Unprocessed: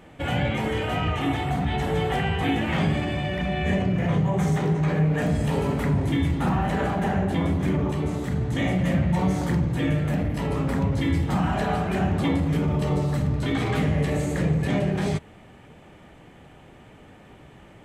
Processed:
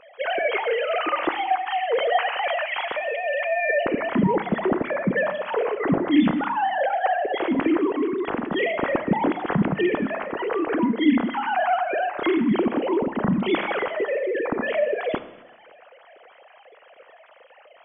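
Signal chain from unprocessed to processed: sine-wave speech; Schroeder reverb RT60 1 s, combs from 26 ms, DRR 12 dB

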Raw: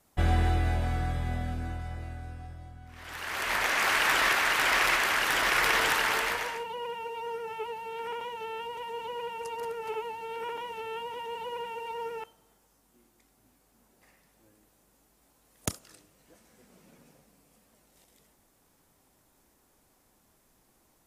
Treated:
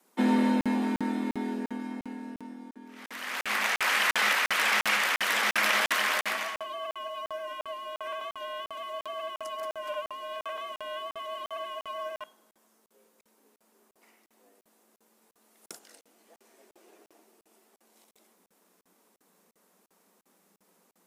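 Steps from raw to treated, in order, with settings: frequency shift +170 Hz; crackling interface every 0.35 s, samples 2048, zero, from 0.61

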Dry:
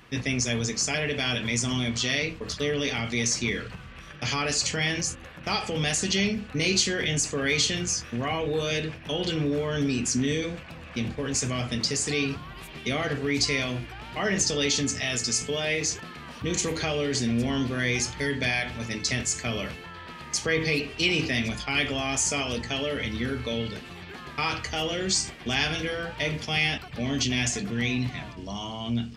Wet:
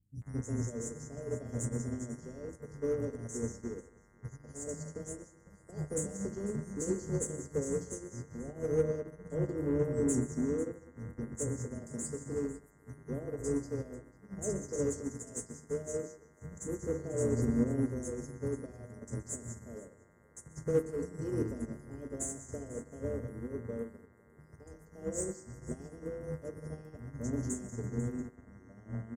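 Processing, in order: elliptic band-stop 530–7400 Hz, stop band 40 dB; bell 2700 Hz -2.5 dB 2.5 oct; buzz 100 Hz, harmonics 21, -51 dBFS -1 dB/oct; three bands offset in time lows, highs, mids 30/220 ms, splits 200/5800 Hz; in parallel at -6.5 dB: soft clip -31 dBFS, distortion -11 dB; on the sum: echo 0.495 s -14.5 dB; on a send at -9.5 dB: reverb RT60 0.75 s, pre-delay 0.113 s; on the sum: upward expander 2.5:1, over -38 dBFS

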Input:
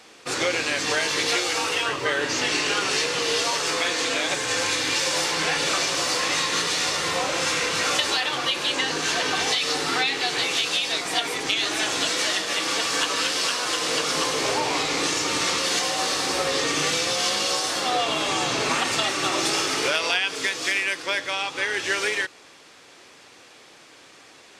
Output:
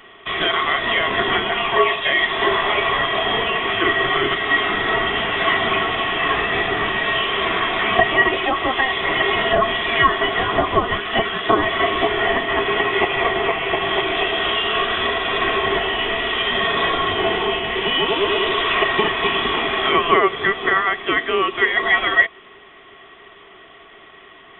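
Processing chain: inverted band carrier 3700 Hz; small resonant body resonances 400/670/1100/1900 Hz, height 16 dB, ringing for 55 ms; gain +1.5 dB

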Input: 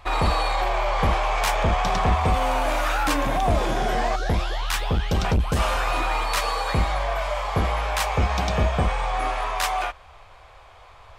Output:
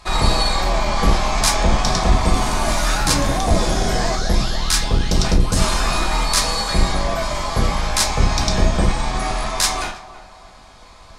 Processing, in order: octaver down 1 oct, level +4 dB; band shelf 6600 Hz +12.5 dB; narrowing echo 0.324 s, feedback 46%, band-pass 680 Hz, level -14 dB; on a send at -2 dB: reverb RT60 0.40 s, pre-delay 3 ms

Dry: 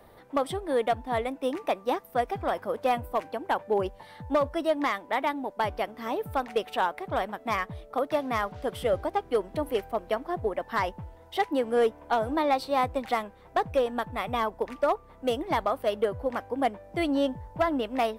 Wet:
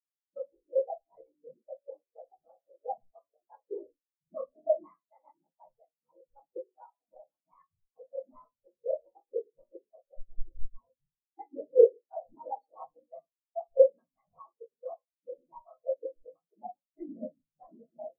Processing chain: whisperiser; 10.14–10.88 Schmitt trigger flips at -33 dBFS; shoebox room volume 85 m³, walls mixed, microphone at 0.63 m; spectral expander 4:1

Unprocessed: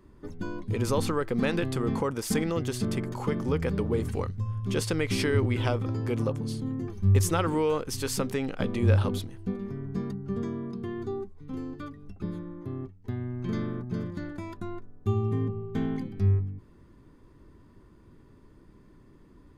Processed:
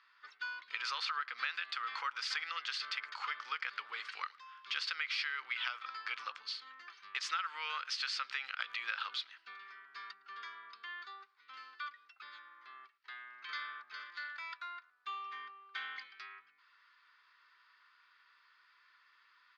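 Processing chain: Chebyshev band-pass 1300–4700 Hz, order 3; compressor 6:1, threshold -41 dBFS, peak gain reduction 12.5 dB; speakerphone echo 0.11 s, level -23 dB; gain +7 dB

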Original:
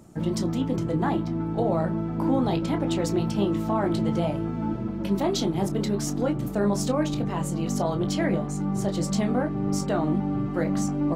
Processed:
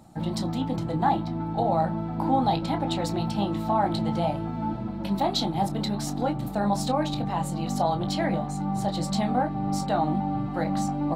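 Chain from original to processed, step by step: thirty-one-band EQ 400 Hz -11 dB, 800 Hz +12 dB, 4000 Hz +9 dB, 6300 Hz -5 dB; gain -1.5 dB

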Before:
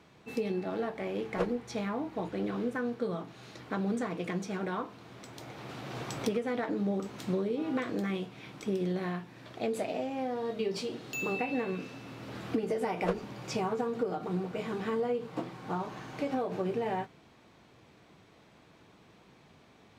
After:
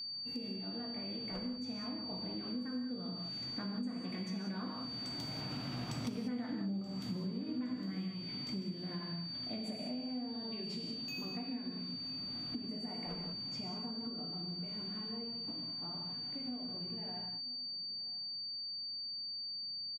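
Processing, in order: Doppler pass-by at 6.05, 13 m/s, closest 17 m; resonant low shelf 310 Hz +6 dB, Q 3; non-linear reverb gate 0.22 s flat, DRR 0 dB; whine 4600 Hz -40 dBFS; on a send: echo 0.98 s -22 dB; on the sum: compressor 5:1, threshold -38 dBFS, peak gain reduction 18.5 dB

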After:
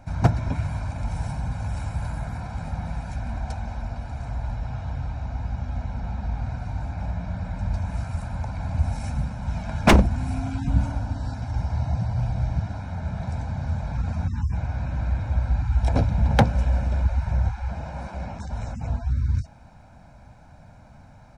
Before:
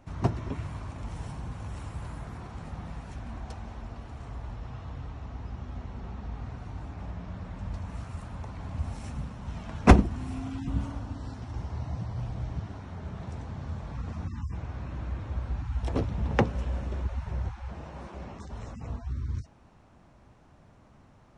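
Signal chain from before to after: notch 3100 Hz, Q 7.3; comb 1.3 ms, depth 72%; wavefolder -12.5 dBFS; gain +5.5 dB

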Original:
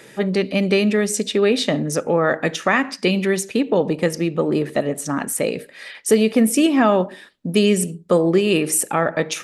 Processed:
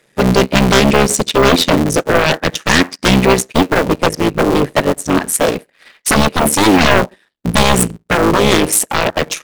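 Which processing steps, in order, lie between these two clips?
cycle switcher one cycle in 3, muted; sine folder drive 13 dB, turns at -3.5 dBFS; upward expander 2.5:1, over -25 dBFS

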